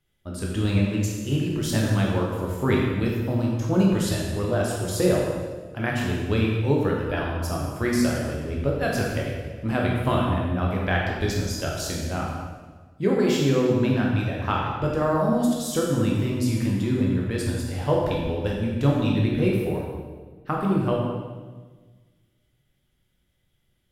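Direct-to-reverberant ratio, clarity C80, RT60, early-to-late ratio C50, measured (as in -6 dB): -2.5 dB, 3.0 dB, 1.4 s, 1.0 dB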